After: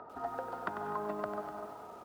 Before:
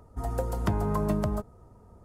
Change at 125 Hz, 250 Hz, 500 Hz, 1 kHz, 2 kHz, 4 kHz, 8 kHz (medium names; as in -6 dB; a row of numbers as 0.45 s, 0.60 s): -24.5 dB, -14.5 dB, -6.5 dB, -1.5 dB, -0.5 dB, -10.0 dB, under -15 dB